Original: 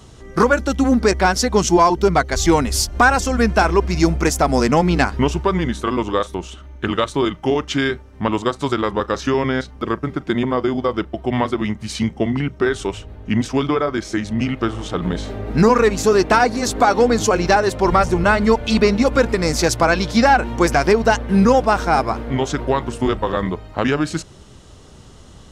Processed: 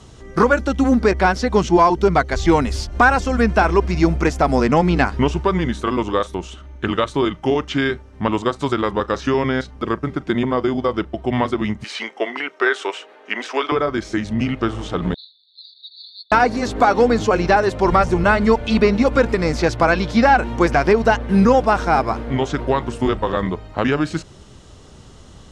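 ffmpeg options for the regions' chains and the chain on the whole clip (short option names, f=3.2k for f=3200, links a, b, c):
-filter_complex "[0:a]asettb=1/sr,asplit=3[a][b][c];[a]atrim=end=11.844[d];[b]atrim=start=11.84:end=13.72,asetpts=PTS-STARTPTS,afade=t=in:d=0.004:c=qsin,afade=t=out:st=1.876:d=0.004:c=qsin,highpass=f=390:w=0.5412,highpass=f=390:w=1.3066,equalizer=f=1.8k:w=0.61:g=7[e];[c]atrim=start=13.716[f];[d][e]acrossfade=d=0.004:c1=hsin:c2=qsin[g];[g][f]acrossfade=d=0.004:c1=qsin:c2=hsin,asettb=1/sr,asplit=3[h][i][j];[h]atrim=end=15.144[k];[i]atrim=start=15.14:end=16.32,asetpts=PTS-STARTPTS,afade=t=in:d=0.004:c=qsin,afade=t=out:st=1.176:d=0.004:c=qsin,acrusher=bits=6:mode=log:mix=0:aa=0.000001,asuperpass=centerf=4000:order=12:qfactor=3.8[l];[j]atrim=start=16.316[m];[k][l]acrossfade=d=0.004:c1=hsin:c2=qsin[n];[n][m]acrossfade=d=0.004:c1=qsin:c2=hsin,lowpass=10k,acrossover=split=3800[o][p];[p]acompressor=threshold=-38dB:ratio=4:attack=1:release=60[q];[o][q]amix=inputs=2:normalize=0"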